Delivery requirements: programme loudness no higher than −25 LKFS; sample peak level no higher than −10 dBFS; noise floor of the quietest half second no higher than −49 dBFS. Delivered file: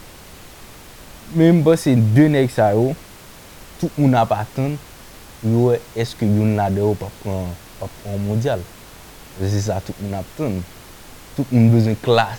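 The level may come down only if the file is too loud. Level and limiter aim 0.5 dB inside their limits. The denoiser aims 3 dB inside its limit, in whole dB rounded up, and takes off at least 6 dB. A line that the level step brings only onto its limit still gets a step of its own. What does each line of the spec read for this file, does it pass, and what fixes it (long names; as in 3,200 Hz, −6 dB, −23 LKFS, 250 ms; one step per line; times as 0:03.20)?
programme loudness −18.5 LKFS: out of spec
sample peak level −3.0 dBFS: out of spec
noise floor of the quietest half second −41 dBFS: out of spec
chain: broadband denoise 6 dB, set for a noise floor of −41 dBFS
level −7 dB
brickwall limiter −10.5 dBFS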